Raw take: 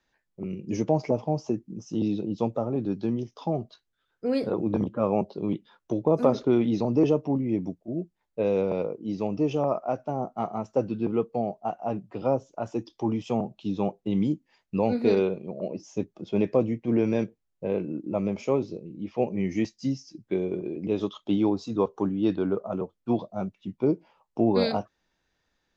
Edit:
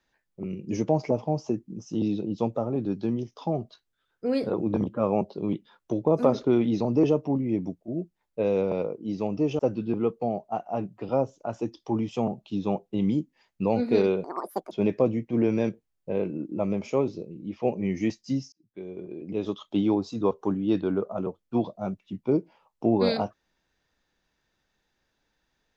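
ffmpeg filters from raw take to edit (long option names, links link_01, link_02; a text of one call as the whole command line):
ffmpeg -i in.wav -filter_complex "[0:a]asplit=5[link_01][link_02][link_03][link_04][link_05];[link_01]atrim=end=9.592[link_06];[link_02]atrim=start=10.718:end=15.374[link_07];[link_03]atrim=start=15.37:end=16.26,asetpts=PTS-STARTPTS,asetrate=82908,aresample=44100,atrim=end_sample=20877,asetpts=PTS-STARTPTS[link_08];[link_04]atrim=start=16.256:end=20.07,asetpts=PTS-STARTPTS,afade=type=out:start_time=3.81:duration=0.004:curve=hsin[link_09];[link_05]atrim=start=20.07,asetpts=PTS-STARTPTS,afade=type=in:duration=1.18[link_10];[link_06][link_07]acrossfade=duration=0.004:curve1=hsin:curve2=hsin[link_11];[link_11][link_08]acrossfade=duration=0.004:curve1=hsin:curve2=hsin[link_12];[link_09][link_10]concat=n=2:v=0:a=1[link_13];[link_12][link_13]acrossfade=duration=0.004:curve1=hsin:curve2=hsin" out.wav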